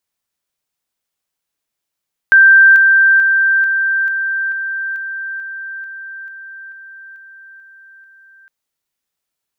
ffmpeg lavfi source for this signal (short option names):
-f lavfi -i "aevalsrc='pow(10,(-3.5-3*floor(t/0.44))/20)*sin(2*PI*1570*t)':d=6.16:s=44100"